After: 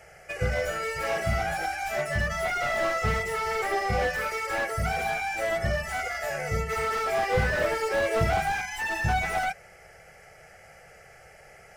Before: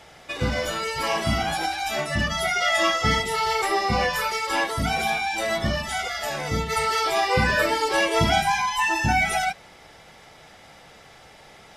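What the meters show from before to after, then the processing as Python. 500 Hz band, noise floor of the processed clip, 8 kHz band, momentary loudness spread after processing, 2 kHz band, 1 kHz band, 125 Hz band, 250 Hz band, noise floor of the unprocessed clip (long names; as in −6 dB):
−1.5 dB, −52 dBFS, −7.5 dB, 5 LU, −4.0 dB, −5.5 dB, −2.0 dB, −8.5 dB, −49 dBFS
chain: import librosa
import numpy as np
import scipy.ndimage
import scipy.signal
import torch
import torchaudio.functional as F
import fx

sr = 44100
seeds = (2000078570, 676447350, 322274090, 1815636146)

y = fx.fixed_phaser(x, sr, hz=1000.0, stages=6)
y = fx.slew_limit(y, sr, full_power_hz=73.0)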